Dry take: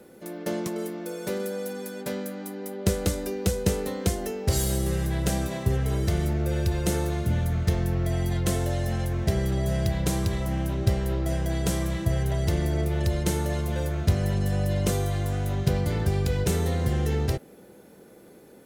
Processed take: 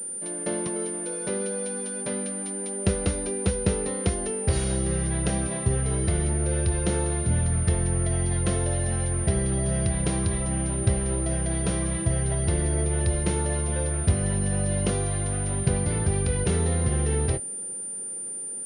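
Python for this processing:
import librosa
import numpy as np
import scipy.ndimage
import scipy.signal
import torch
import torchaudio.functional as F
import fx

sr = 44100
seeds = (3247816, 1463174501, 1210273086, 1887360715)

y = fx.doubler(x, sr, ms=25.0, db=-14)
y = fx.pwm(y, sr, carrier_hz=9200.0)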